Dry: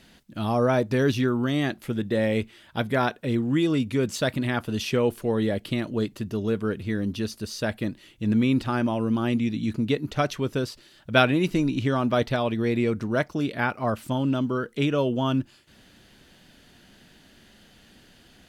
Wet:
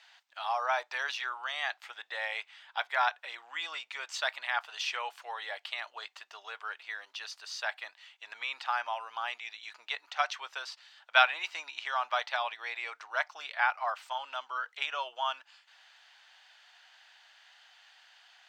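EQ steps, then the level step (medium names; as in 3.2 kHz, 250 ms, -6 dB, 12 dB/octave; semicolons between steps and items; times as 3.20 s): boxcar filter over 4 samples; elliptic high-pass 780 Hz, stop band 80 dB; 0.0 dB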